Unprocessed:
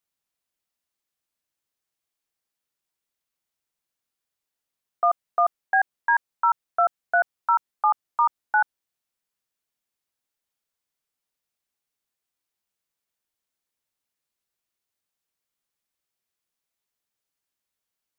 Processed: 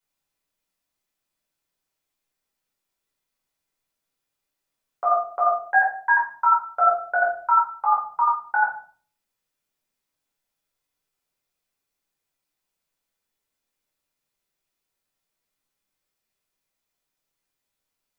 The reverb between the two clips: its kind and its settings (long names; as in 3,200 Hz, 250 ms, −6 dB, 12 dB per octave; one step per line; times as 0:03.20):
rectangular room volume 380 cubic metres, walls furnished, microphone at 4.8 metres
level −4 dB